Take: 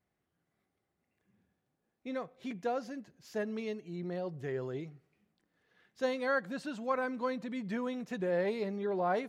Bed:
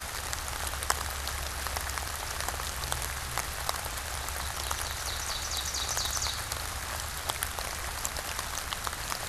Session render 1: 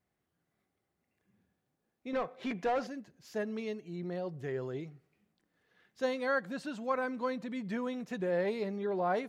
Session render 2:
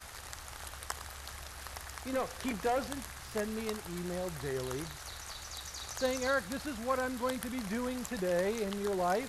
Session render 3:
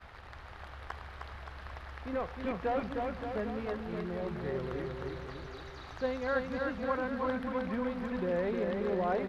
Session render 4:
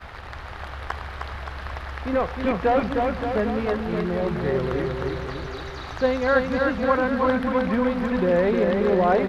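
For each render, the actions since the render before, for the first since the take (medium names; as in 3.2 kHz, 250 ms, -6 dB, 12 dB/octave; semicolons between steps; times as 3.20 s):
2.13–2.87 s: overdrive pedal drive 20 dB, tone 1.7 kHz, clips at -23.5 dBFS
add bed -11 dB
distance through air 370 m; bouncing-ball echo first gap 310 ms, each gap 0.85×, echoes 5
trim +12 dB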